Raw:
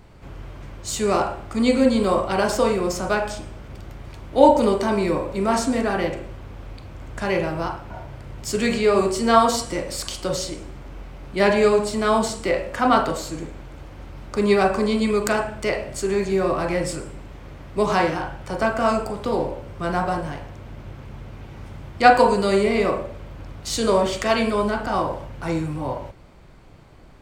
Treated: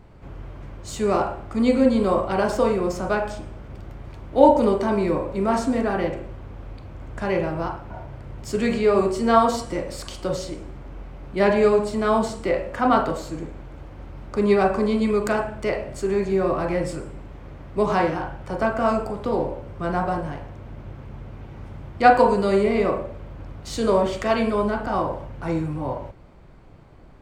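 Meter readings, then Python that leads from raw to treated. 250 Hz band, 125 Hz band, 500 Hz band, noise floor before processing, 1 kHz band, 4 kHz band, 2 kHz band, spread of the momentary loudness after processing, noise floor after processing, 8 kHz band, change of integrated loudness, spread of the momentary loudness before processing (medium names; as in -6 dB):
0.0 dB, 0.0 dB, -0.5 dB, -42 dBFS, -1.0 dB, -7.0 dB, -3.5 dB, 21 LU, -42 dBFS, -8.5 dB, -1.0 dB, 22 LU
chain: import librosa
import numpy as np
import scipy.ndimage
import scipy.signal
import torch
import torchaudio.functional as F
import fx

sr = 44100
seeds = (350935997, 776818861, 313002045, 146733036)

y = fx.high_shelf(x, sr, hz=2400.0, db=-9.5)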